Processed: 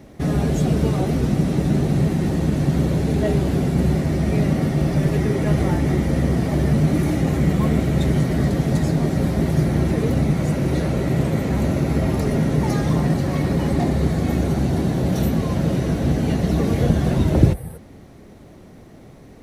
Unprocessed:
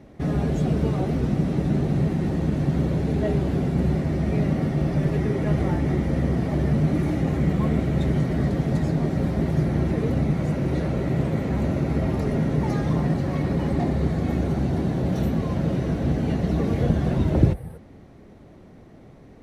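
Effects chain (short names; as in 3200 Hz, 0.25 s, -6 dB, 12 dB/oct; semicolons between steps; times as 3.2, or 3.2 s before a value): high shelf 5200 Hz +12 dB; gain +3.5 dB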